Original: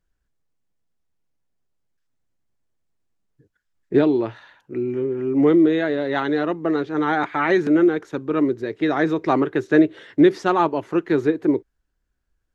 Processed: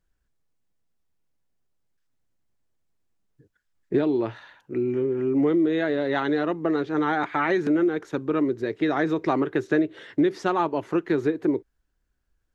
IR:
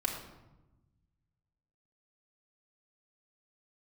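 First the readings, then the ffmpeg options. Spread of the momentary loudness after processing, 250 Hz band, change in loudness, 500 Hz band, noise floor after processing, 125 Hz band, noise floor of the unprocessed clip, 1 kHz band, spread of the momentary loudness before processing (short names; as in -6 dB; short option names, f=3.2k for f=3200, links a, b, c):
5 LU, -4.5 dB, -4.5 dB, -4.0 dB, -75 dBFS, -3.5 dB, -75 dBFS, -4.0 dB, 8 LU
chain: -af "acompressor=threshold=-20dB:ratio=3"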